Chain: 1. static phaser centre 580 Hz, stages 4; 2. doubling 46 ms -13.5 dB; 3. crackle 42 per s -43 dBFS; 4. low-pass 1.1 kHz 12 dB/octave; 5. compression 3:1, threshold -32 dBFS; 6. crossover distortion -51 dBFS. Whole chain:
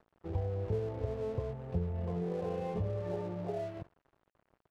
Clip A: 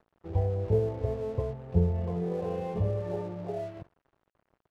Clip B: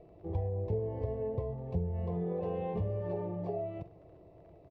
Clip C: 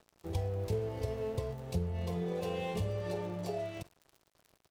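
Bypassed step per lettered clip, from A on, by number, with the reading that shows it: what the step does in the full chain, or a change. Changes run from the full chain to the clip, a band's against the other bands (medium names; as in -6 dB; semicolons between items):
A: 5, crest factor change +4.5 dB; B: 6, distortion -20 dB; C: 4, 4 kHz band +11.0 dB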